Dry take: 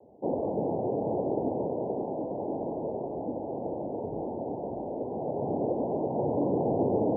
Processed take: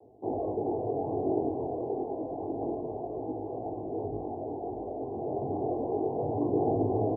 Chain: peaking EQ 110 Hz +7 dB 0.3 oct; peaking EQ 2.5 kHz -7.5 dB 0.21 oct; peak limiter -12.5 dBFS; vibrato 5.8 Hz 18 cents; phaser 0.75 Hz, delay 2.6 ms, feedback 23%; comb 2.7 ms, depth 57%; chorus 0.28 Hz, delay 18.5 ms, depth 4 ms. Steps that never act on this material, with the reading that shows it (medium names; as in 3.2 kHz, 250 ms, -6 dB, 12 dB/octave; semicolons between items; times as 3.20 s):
peaking EQ 2.5 kHz: input has nothing above 1.1 kHz; peak limiter -12.5 dBFS: peak at its input -15.5 dBFS